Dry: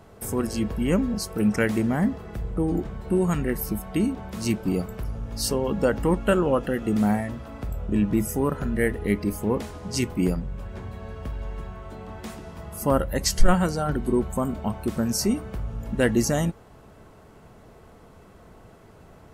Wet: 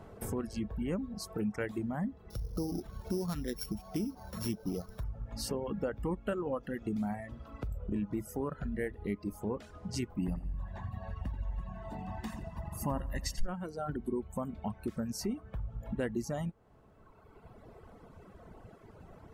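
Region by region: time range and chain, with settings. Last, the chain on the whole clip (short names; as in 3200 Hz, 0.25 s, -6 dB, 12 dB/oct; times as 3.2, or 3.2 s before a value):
2.3–5.03 sample sorter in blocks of 8 samples + high shelf 8100 Hz +12 dB
10.18–13.46 comb 1.1 ms, depth 68% + feedback echo 85 ms, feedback 51%, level -8 dB
whole clip: reverb removal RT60 1.8 s; high shelf 2700 Hz -9 dB; compressor 2.5:1, threshold -37 dBFS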